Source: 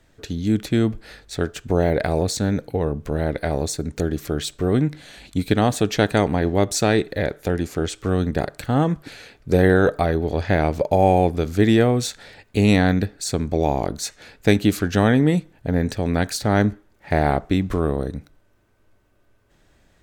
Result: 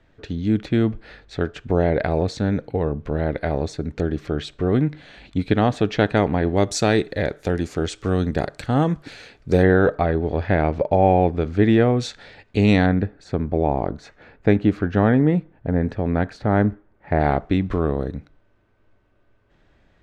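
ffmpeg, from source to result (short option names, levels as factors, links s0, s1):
-af "asetnsamples=n=441:p=0,asendcmd='6.57 lowpass f 7100;9.63 lowpass f 2600;11.99 lowpass f 4400;12.86 lowpass f 1700;17.2 lowpass f 3400',lowpass=3200"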